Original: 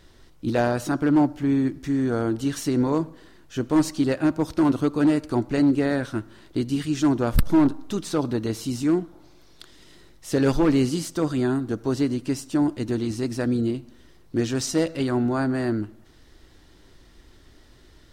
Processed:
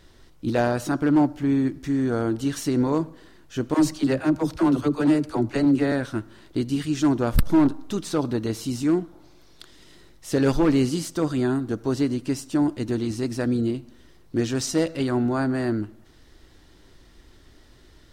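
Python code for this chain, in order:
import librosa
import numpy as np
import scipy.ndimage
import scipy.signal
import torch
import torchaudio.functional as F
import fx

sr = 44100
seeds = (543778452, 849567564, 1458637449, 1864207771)

y = fx.dispersion(x, sr, late='lows', ms=58.0, hz=330.0, at=(3.74, 5.92))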